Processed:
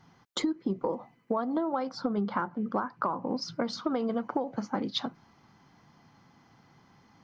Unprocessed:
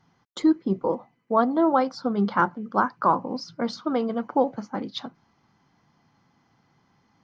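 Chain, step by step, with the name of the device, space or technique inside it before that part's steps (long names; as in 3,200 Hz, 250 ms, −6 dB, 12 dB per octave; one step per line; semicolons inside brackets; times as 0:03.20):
0:01.89–0:03.42: high-shelf EQ 3,600 Hz −8 dB
serial compression, leveller first (downward compressor 3 to 1, threshold −23 dBFS, peak gain reduction 6.5 dB; downward compressor 6 to 1, threshold −31 dBFS, peak gain reduction 10.5 dB)
level +4.5 dB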